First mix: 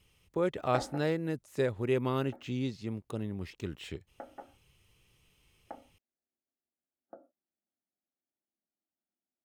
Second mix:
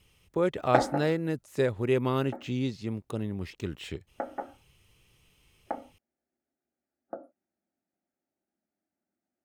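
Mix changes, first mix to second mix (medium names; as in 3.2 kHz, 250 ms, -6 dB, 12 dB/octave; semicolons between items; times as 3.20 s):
speech +3.5 dB; background +11.5 dB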